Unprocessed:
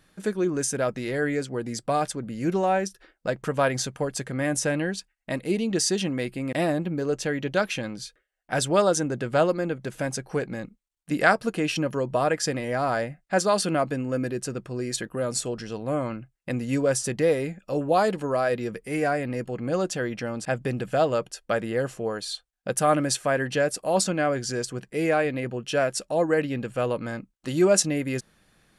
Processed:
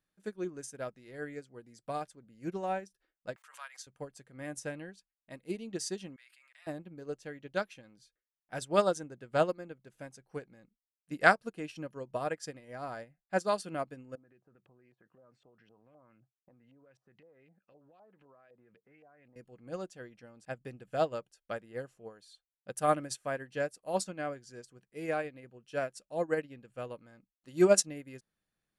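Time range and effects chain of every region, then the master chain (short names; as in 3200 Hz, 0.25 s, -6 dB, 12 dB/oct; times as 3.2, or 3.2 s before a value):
3.36–3.87 HPF 1100 Hz 24 dB/oct + backwards sustainer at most 42 dB/s
6.16–6.67 HPF 1300 Hz 24 dB/oct + high shelf 8900 Hz -10.5 dB + sustainer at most 21 dB/s
14.15–19.36 HPF 80 Hz 24 dB/oct + compressor 10:1, threshold -35 dBFS + LFO low-pass saw up 3.9 Hz 680–3300 Hz
whole clip: high shelf 9200 Hz +2 dB; upward expander 2.5:1, over -31 dBFS; gain -1.5 dB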